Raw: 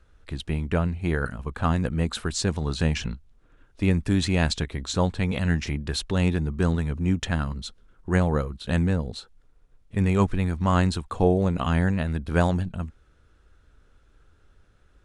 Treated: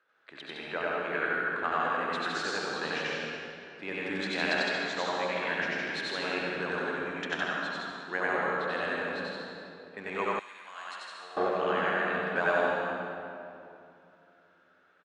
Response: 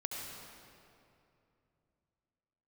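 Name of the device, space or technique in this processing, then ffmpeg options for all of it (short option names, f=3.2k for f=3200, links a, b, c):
station announcement: -filter_complex "[0:a]highpass=430,lowpass=3.8k,equalizer=f=1.6k:t=o:w=0.53:g=6,aecho=1:1:93.29|160.3:1|0.708[a];[1:a]atrim=start_sample=2205[b];[a][b]afir=irnorm=-1:irlink=0,highpass=f=260:p=1,asettb=1/sr,asplit=3[c][d][e];[c]atrim=end=10.394[f];[d]atrim=start=10.39:end=11.37,asetpts=PTS-STARTPTS,afade=t=in:d=0.004:c=qsin,afade=t=out:st=0.976:d=0.004:c=qsin,aderivative[g];[e]atrim=start=11.366[h];[f][g]acrossfade=d=0.004:c1=hsin:c2=qsin[i];[i][h]acrossfade=d=0.004:c1=qsin:c2=hsin,volume=-4.5dB"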